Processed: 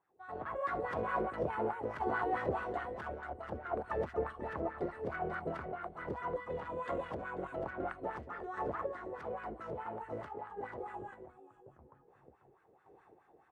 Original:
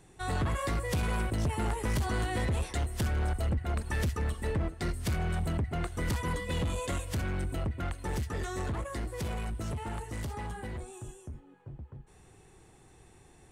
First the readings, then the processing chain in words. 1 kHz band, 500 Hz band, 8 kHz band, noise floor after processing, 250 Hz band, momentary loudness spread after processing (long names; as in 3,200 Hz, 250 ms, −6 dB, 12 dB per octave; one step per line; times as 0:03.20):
+1.0 dB, +1.0 dB, below −30 dB, −67 dBFS, −7.5 dB, 9 LU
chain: high-shelf EQ 2,300 Hz −11.5 dB
on a send: single-tap delay 491 ms −5 dB
on the sum: automatic gain control gain up to 9.5 dB
sample-and-hold tremolo
LFO wah 4.7 Hz 460–1,500 Hz, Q 3.1